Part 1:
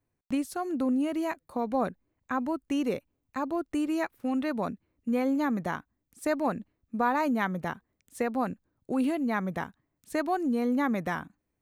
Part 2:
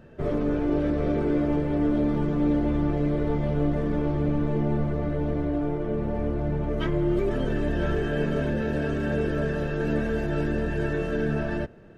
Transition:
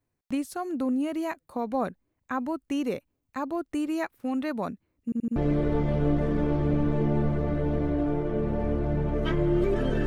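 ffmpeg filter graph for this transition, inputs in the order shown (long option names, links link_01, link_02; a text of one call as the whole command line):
ffmpeg -i cue0.wav -i cue1.wav -filter_complex "[0:a]apad=whole_dur=10.06,atrim=end=10.06,asplit=4[link_01][link_02][link_03][link_04];[link_01]atrim=end=5.122[link_05];[link_02]atrim=start=5.038:end=5.122[link_06];[link_03]atrim=start=5.038:end=5.122[link_07];[link_04]atrim=start=5.038:end=5.122[link_08];[1:a]atrim=start=2.908:end=7.61[link_09];[link_05][link_06]acrossfade=duration=0.004:curve1=hsin:curve2=hsin[link_10];[link_10][link_07]acrossfade=duration=0.004:curve1=hsin:curve2=hsin[link_11];[link_11][link_08]acrossfade=duration=0.004:curve1=hsin:curve2=hsin[link_12];[link_12][link_09]acrossfade=duration=0.004:curve1=hsin:curve2=hsin" out.wav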